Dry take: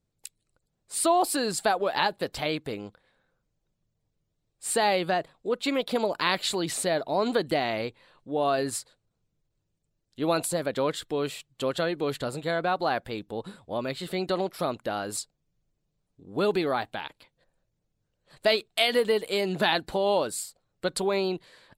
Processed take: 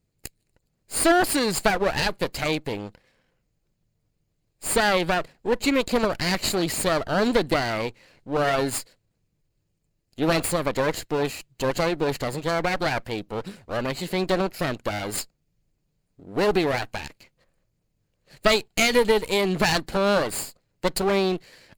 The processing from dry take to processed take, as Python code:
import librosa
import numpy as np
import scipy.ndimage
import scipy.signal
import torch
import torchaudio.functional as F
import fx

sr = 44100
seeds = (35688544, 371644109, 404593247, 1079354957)

y = fx.lower_of_two(x, sr, delay_ms=0.43)
y = F.gain(torch.from_numpy(y), 5.5).numpy()